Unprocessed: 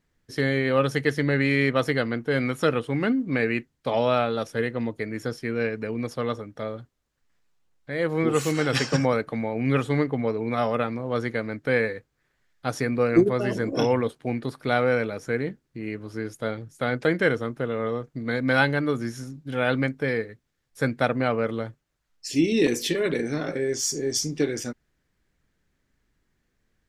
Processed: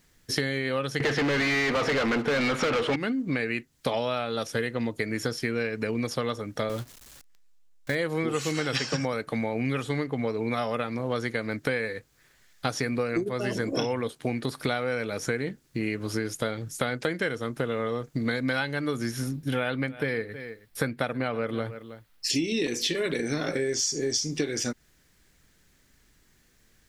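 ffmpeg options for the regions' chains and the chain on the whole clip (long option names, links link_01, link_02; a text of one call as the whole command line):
ffmpeg -i in.wav -filter_complex "[0:a]asettb=1/sr,asplit=3[link_01][link_02][link_03];[link_01]atrim=end=1.004[link_04];[link_02]atrim=start=1:end=2.96,asetpts=PTS-STARTPTS,afade=type=in:duration=0.004:curve=qsin,afade=type=out:start_time=1.956:duration=0.004:curve=qsin,lowpass=frequency=2500:poles=1,asplit=2[link_05][link_06];[link_06]highpass=frequency=720:poles=1,volume=35dB,asoftclip=type=tanh:threshold=-8dB[link_07];[link_05][link_07]amix=inputs=2:normalize=0,lowpass=frequency=1800:poles=1,volume=-6dB,aecho=1:1:188:0.133,atrim=end_sample=86436[link_08];[link_03]atrim=start=2.956[link_09];[link_04][link_08]acrossfade=duration=0.004:curve1=hsin:curve2=qsin[link_10];[link_10][link_09]acrossfade=duration=0.004:curve1=qsin:curve2=hsin,asettb=1/sr,asplit=3[link_11][link_12][link_13];[link_11]atrim=end=6.694[link_14];[link_12]atrim=start=6.69:end=7.95,asetpts=PTS-STARTPTS,afade=type=in:duration=0.004:curve=qsin,afade=type=out:start_time=1.256:duration=0.004:curve=qsin,aeval=exprs='val(0)+0.5*0.00708*sgn(val(0))':channel_layout=same,agate=range=-14dB:threshold=-40dB:ratio=16:release=100:detection=peak[link_15];[link_13]atrim=start=7.946[link_16];[link_14][link_15]acrossfade=duration=0.004:curve1=hsin:curve2=qsin[link_17];[link_17][link_16]acrossfade=duration=0.004:curve1=qsin:curve2=hsin,asettb=1/sr,asplit=3[link_18][link_19][link_20];[link_18]atrim=end=19.114[link_21];[link_19]atrim=start=19.11:end=22.3,asetpts=PTS-STARTPTS,afade=type=in:duration=0.004:curve=qsin,afade=type=out:start_time=3.186:duration=0.004:curve=qsin,equalizer=frequency=6700:width_type=o:width=0.97:gain=-10.5,aecho=1:1:319:0.0841,atrim=end_sample=140679[link_22];[link_20]atrim=start=22.296[link_23];[link_21][link_22]acrossfade=duration=0.004:curve1=hsin:curve2=qsin[link_24];[link_24][link_23]acrossfade=duration=0.004:curve1=qsin:curve2=hsin,acrossover=split=6000[link_25][link_26];[link_26]acompressor=threshold=-53dB:ratio=4:attack=1:release=60[link_27];[link_25][link_27]amix=inputs=2:normalize=0,highshelf=frequency=3100:gain=11.5,acompressor=threshold=-32dB:ratio=10,volume=7.5dB" out.wav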